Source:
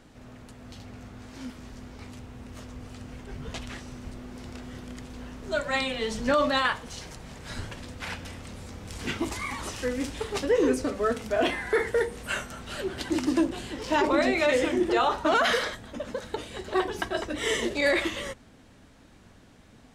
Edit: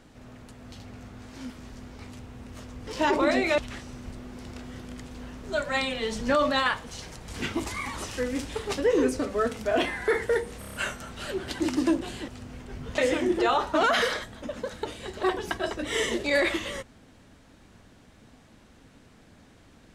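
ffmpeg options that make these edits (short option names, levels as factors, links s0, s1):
-filter_complex "[0:a]asplit=11[s0][s1][s2][s3][s4][s5][s6][s7][s8][s9][s10];[s0]atrim=end=2.872[s11];[s1]atrim=start=13.778:end=14.492[s12];[s2]atrim=start=3.568:end=7.272[s13];[s3]atrim=start=8.928:end=12.272[s14];[s4]atrim=start=12.238:end=12.272[s15];[s5]atrim=start=12.238:end=12.272[s16];[s6]atrim=start=12.238:end=12.272[s17];[s7]atrim=start=12.238:end=12.272[s18];[s8]atrim=start=12.238:end=13.782[s19];[s9]atrim=start=2.868:end=3.572[s20];[s10]atrim=start=14.488[s21];[s11][s12]acrossfade=d=0.004:c1=hsin:c2=hsin[s22];[s22][s13]acrossfade=d=0.004:c1=hsin:c2=hsin[s23];[s23][s14]acrossfade=d=0.004:c1=hsin:c2=hsin[s24];[s24][s15]acrossfade=d=0.004:c1=hsin:c2=hsin[s25];[s25][s16]acrossfade=d=0.004:c1=hsin:c2=hsin[s26];[s26][s17]acrossfade=d=0.004:c1=hsin:c2=hsin[s27];[s27][s18]acrossfade=d=0.004:c1=hsin:c2=hsin[s28];[s28][s19]acrossfade=d=0.004:c1=hsin:c2=hsin[s29];[s29][s20]acrossfade=d=0.004:c1=hsin:c2=hsin[s30];[s30][s21]acrossfade=d=0.004:c1=hsin:c2=hsin"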